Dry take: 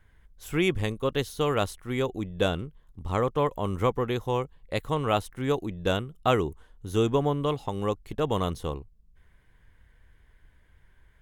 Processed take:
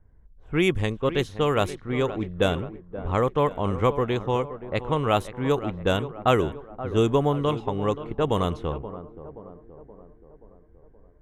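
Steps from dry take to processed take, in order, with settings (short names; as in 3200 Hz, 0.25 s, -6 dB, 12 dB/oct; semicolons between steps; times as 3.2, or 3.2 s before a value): bell 4600 Hz -4.5 dB 0.53 oct; on a send: tape echo 0.526 s, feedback 60%, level -12 dB, low-pass 2500 Hz; on the sum: low-pass opened by the level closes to 630 Hz, open at -20.5 dBFS; gain +3 dB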